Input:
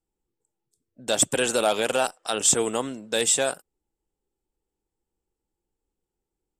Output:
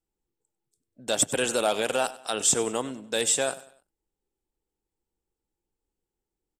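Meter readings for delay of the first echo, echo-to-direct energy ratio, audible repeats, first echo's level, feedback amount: 97 ms, -17.5 dB, 3, -18.0 dB, 39%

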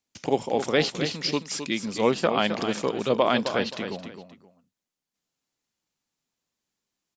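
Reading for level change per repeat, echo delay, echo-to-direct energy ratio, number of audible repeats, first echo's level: -12.0 dB, 263 ms, -8.5 dB, 2, -9.0 dB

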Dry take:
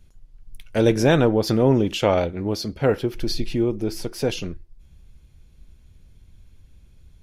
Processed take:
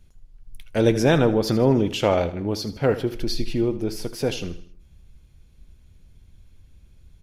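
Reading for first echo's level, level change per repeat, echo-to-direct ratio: -14.5 dB, -7.0 dB, -13.5 dB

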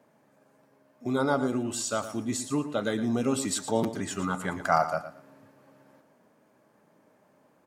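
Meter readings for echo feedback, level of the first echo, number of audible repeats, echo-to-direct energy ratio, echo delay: 22%, -12.0 dB, 2, -12.0 dB, 114 ms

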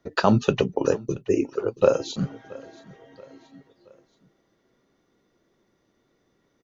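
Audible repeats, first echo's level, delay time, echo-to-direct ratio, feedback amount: 2, -22.0 dB, 677 ms, -21.0 dB, 47%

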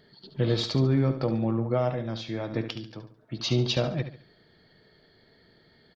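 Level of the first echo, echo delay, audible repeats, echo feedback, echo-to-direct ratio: -10.0 dB, 71 ms, 3, 35%, -9.5 dB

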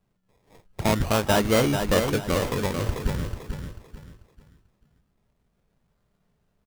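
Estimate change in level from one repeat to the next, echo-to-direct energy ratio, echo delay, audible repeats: -10.0 dB, -6.0 dB, 441 ms, 3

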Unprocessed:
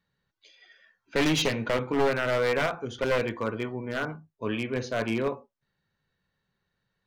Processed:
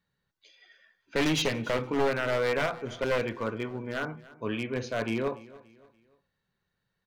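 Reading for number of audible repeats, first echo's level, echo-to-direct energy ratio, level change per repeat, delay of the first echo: 2, -20.0 dB, -19.5 dB, -8.0 dB, 288 ms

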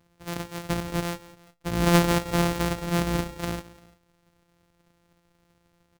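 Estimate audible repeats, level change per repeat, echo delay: 2, -6.5 dB, 172 ms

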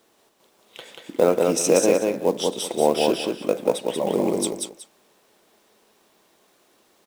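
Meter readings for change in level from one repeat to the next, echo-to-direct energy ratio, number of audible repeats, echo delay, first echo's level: -13.0 dB, -3.0 dB, 2, 186 ms, -3.0 dB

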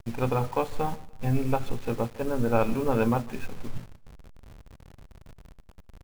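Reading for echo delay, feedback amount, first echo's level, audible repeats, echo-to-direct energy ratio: 150 ms, 36%, -22.0 dB, 2, -21.5 dB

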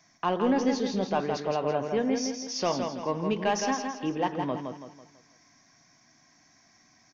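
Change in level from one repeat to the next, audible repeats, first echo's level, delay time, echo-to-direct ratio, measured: -8.0 dB, 4, -5.5 dB, 165 ms, -4.5 dB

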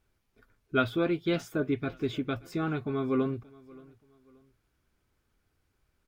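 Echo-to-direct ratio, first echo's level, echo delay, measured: -22.5 dB, -23.0 dB, 578 ms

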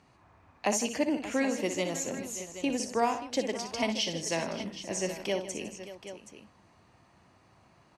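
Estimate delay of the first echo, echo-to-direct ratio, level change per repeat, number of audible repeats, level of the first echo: 60 ms, -5.5 dB, no regular repeats, 4, -8.5 dB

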